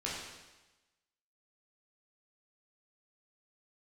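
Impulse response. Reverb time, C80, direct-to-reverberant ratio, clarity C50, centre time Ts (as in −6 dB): 1.1 s, 3.0 dB, −6.5 dB, 0.5 dB, 74 ms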